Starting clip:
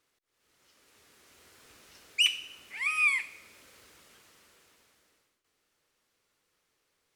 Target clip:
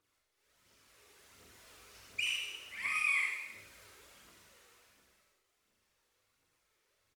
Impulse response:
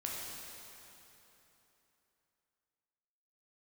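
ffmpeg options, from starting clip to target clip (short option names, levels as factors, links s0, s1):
-filter_complex "[0:a]alimiter=limit=0.0631:level=0:latency=1:release=23,aecho=1:1:40|90|152.5|230.6|328.3:0.631|0.398|0.251|0.158|0.1,aphaser=in_gain=1:out_gain=1:delay=2.7:decay=0.61:speed=1.4:type=triangular,asettb=1/sr,asplit=3[s0][s1][s2];[s0]atrim=end=3.054[s3];[s1]atrim=start=3.05:end=3.55,asetpts=PTS-STARTPTS,afade=t=in:d=0.004:c=qsin,afade=t=out:st=0.496:d=0.004:c=qsin,highpass=f=140:w=0.5412,highpass=f=140:w=1.3066[s4];[s2]atrim=start=3.546[s5];[s3][s4]acrossfade=d=0.004:c1=hsin:c2=qsin[s6];[s6][s5]acrossfade=d=0.004:c1=qsin:c2=hsin[s7];[1:a]atrim=start_sample=2205,atrim=end_sample=6174[s8];[s7][s8]afir=irnorm=-1:irlink=0,volume=0.596"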